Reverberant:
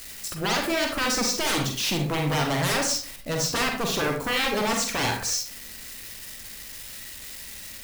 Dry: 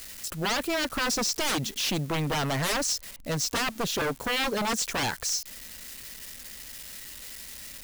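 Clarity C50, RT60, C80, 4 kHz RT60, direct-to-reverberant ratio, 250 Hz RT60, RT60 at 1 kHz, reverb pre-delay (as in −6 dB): 4.0 dB, 0.45 s, 10.0 dB, 0.30 s, 1.5 dB, 0.50 s, 0.45 s, 37 ms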